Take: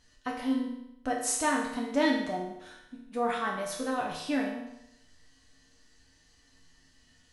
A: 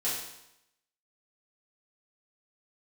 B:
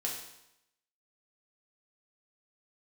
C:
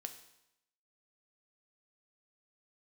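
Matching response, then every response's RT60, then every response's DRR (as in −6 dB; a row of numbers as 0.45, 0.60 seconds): B; 0.85, 0.85, 0.85 seconds; −10.0, −2.5, 6.5 decibels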